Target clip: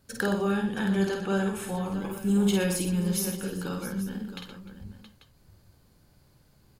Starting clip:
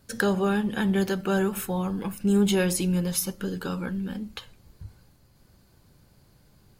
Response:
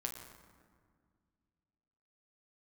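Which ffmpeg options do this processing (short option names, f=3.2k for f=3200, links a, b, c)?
-filter_complex "[0:a]asettb=1/sr,asplit=3[a][b][c];[a]atrim=end=0.524[d];[b]atrim=start=0.52:end=1.76,asetpts=PTS-STARTPTS,afade=t=in:d=0.004:c=qsin,afade=t=out:st=1.236:d=0.004:c=qsin,lowpass=f=11k:w=0.5412,lowpass=f=11k:w=1.3066[e];[c]atrim=start=1.756[f];[d][e]acrossfade=d=0.004:c1=hsin:c2=qsin[g];[g][f]acrossfade=d=0.004:c1=qsin:c2=hsin,aecho=1:1:51|120|302|672|841:0.668|0.335|0.106|0.251|0.178,volume=-4.5dB"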